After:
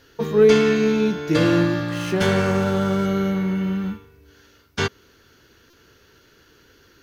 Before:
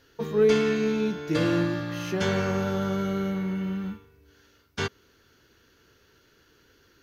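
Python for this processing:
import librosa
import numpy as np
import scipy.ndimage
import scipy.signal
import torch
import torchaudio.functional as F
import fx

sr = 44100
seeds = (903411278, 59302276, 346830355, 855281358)

y = fx.buffer_glitch(x, sr, at_s=(5.7,), block=128, repeats=10)
y = fx.running_max(y, sr, window=3, at=(1.88, 3.06))
y = F.gain(torch.from_numpy(y), 6.5).numpy()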